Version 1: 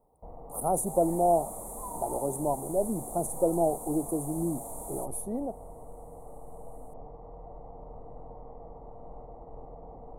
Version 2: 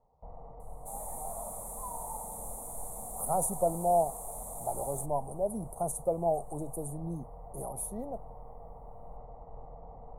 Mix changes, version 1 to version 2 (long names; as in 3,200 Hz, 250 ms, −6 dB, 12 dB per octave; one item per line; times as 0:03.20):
speech: entry +2.65 s
master: add parametric band 320 Hz −13 dB 0.89 octaves